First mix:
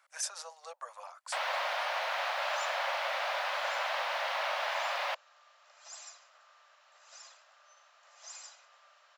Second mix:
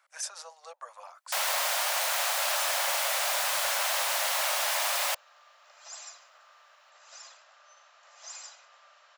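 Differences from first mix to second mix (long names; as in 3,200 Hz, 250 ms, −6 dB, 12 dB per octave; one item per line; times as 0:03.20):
first sound: remove high-frequency loss of the air 290 metres
second sound +4.0 dB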